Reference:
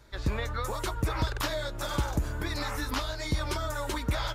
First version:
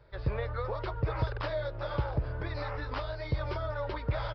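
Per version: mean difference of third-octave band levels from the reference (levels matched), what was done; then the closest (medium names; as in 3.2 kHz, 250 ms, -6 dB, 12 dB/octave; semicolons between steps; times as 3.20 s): 9.5 dB: ten-band graphic EQ 125 Hz +8 dB, 250 Hz -10 dB, 500 Hz +9 dB, 4 kHz -7 dB; resampled via 11.025 kHz; trim -4.5 dB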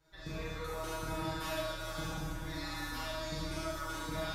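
6.0 dB: feedback comb 160 Hz, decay 0.21 s, harmonics all, mix 100%; Schroeder reverb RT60 1.6 s, combs from 27 ms, DRR -7 dB; trim -3.5 dB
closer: second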